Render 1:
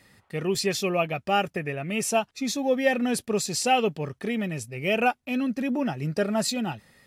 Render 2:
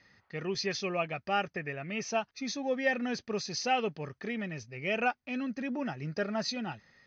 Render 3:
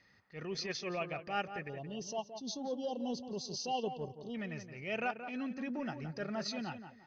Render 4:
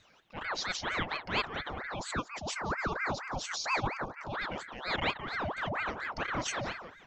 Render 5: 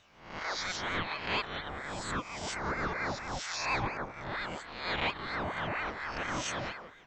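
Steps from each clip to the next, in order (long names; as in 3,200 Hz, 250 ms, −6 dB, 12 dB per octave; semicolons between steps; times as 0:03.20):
Chebyshev low-pass with heavy ripple 6,400 Hz, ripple 6 dB; level −2.5 dB
time-frequency box erased 0:01.69–0:04.35, 1,100–2,700 Hz; transient designer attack −8 dB, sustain −3 dB; tape delay 173 ms, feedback 31%, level −8 dB, low-pass 1,700 Hz; level −3.5 dB
ring modulator whose carrier an LFO sweeps 1,100 Hz, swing 70%, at 4.3 Hz; level +7 dB
peak hold with a rise ahead of every peak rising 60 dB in 0.62 s; level −4 dB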